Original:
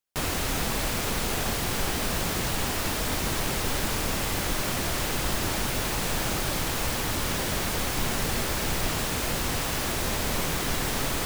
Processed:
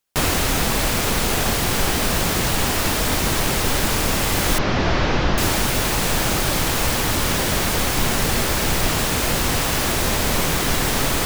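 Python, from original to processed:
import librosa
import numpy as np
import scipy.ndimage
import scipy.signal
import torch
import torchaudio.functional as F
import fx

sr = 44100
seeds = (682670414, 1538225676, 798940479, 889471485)

y = fx.delta_mod(x, sr, bps=32000, step_db=-40.0, at=(4.58, 5.38))
y = fx.rider(y, sr, range_db=10, speed_s=0.5)
y = F.gain(torch.from_numpy(y), 8.0).numpy()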